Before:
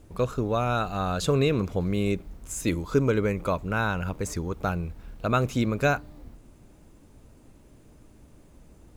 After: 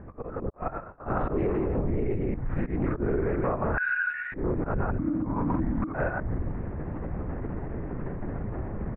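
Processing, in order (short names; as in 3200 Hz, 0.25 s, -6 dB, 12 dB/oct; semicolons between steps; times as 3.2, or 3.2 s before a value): stepped spectrum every 0.1 s; AGC gain up to 11 dB; echo 0.17 s -5.5 dB; 0.49–1.05 gate -12 dBFS, range -56 dB; 3.77–4.34 brick-wall FIR high-pass 1400 Hz; auto swell 0.57 s; LPC vocoder at 8 kHz whisper; Chebyshev low-pass 1900 Hz, order 4; in parallel at 0 dB: limiter -16 dBFS, peak gain reduction 11.5 dB; 4.98–5.94 on the sum: frequency shift -330 Hz; compressor 20:1, threshold -27 dBFS, peak gain reduction 18.5 dB; Doppler distortion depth 0.18 ms; gain +4 dB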